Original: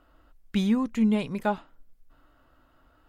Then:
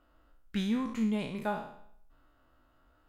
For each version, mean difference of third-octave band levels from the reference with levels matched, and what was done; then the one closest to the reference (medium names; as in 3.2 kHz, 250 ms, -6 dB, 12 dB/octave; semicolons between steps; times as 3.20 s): 5.0 dB: spectral sustain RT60 0.65 s; trim -7.5 dB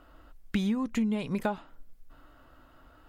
2.5 dB: compression 16:1, threshold -30 dBFS, peak gain reduction 12.5 dB; trim +5 dB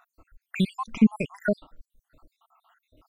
9.5 dB: random holes in the spectrogram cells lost 73%; trim +6.5 dB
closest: second